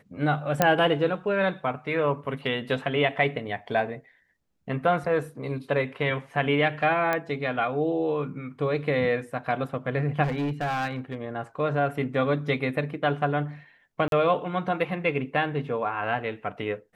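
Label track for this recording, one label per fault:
0.620000	0.620000	pop -5 dBFS
7.130000	7.130000	pop -12 dBFS
10.230000	11.150000	clipped -24 dBFS
14.080000	14.120000	dropout 42 ms

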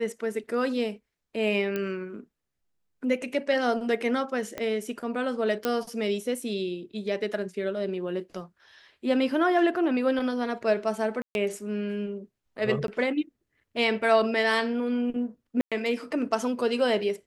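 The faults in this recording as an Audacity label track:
1.760000	1.760000	pop -17 dBFS
4.580000	4.580000	pop -18 dBFS
5.650000	5.650000	pop -12 dBFS
11.220000	11.350000	dropout 131 ms
12.870000	12.880000	dropout 12 ms
15.610000	15.720000	dropout 106 ms

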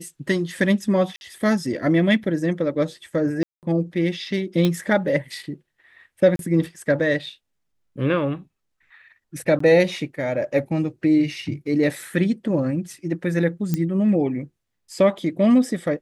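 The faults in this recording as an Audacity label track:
1.160000	1.210000	dropout 51 ms
3.430000	3.630000	dropout 198 ms
4.650000	4.650000	pop -9 dBFS
6.360000	6.390000	dropout 32 ms
9.590000	9.600000	dropout 14 ms
13.740000	13.740000	pop -10 dBFS

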